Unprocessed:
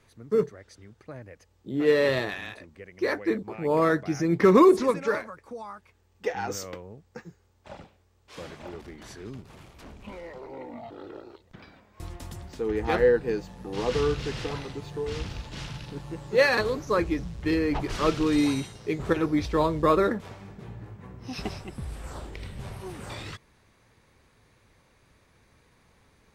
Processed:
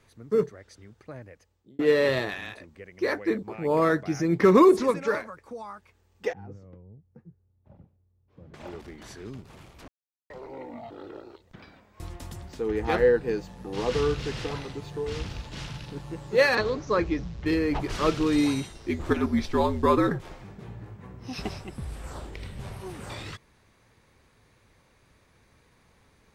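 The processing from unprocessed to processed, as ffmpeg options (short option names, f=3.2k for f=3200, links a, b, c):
-filter_complex "[0:a]asettb=1/sr,asplit=3[a][b][c];[a]atrim=end=6.334[d];[b]atrim=start=6.33:end=8.54,asetpts=PTS-STARTPTS,afade=t=in:d=0.004:c=qsin,afade=t=out:st=2.206:d=0.004:c=qsin,bandpass=f=110:t=q:w=1.2[e];[c]atrim=start=8.536[f];[d][e]acrossfade=d=0.004:c1=hsin:c2=qsin[g];[g][f]acrossfade=d=0.004:c1=qsin:c2=hsin,asettb=1/sr,asplit=3[h][i][j];[h]atrim=end=16.554[k];[i]atrim=start=16.55:end=17.46,asetpts=PTS-STARTPTS,afade=t=in:d=0.004:c=qsin,afade=t=out:st=0.906:d=0.004:c=qsin,lowpass=f=6.4k:w=0.5412,lowpass=f=6.4k:w=1.3066[l];[j]atrim=start=17.456[m];[k][l]acrossfade=d=0.004:c1=hsin:c2=qsin[n];[n][m]acrossfade=d=0.004:c1=qsin:c2=hsin,asettb=1/sr,asplit=3[o][p][q];[o]atrim=end=18.694[r];[p]atrim=start=18.69:end=20.44,asetpts=PTS-STARTPTS,afade=t=in:d=0.004:c=qsin,afade=t=out:st=1.746:d=0.004:c=qsin,afreqshift=-67[s];[q]atrim=start=20.436[t];[r][s]acrossfade=d=0.004:c1=hsin:c2=qsin[u];[u][t]acrossfade=d=0.004:c1=qsin:c2=hsin,asplit=4[v][w][x][y];[v]atrim=end=1.79,asetpts=PTS-STARTPTS,afade=t=out:st=1.2:d=0.59[z];[w]atrim=start=1.79:end=9.88,asetpts=PTS-STARTPTS,afade=t=in:d=0.004:c=hsin,afade=t=out:st=8.086:d=0.004:c=hsin[aa];[x]atrim=start=9.88:end=10.3,asetpts=PTS-STARTPTS,volume=0[ab];[y]atrim=start=10.3,asetpts=PTS-STARTPTS,afade=t=in:d=0.004:c=hsin[ac];[z][aa][ab][ac]concat=n=4:v=0:a=1"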